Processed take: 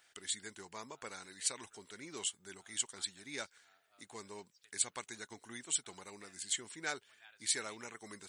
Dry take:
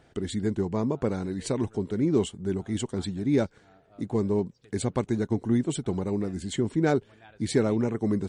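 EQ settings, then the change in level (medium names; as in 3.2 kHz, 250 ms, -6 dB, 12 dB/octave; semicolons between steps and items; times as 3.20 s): pre-emphasis filter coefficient 0.97; peaking EQ 1.6 kHz +11.5 dB 2.7 oct; treble shelf 5.3 kHz +8 dB; -3.5 dB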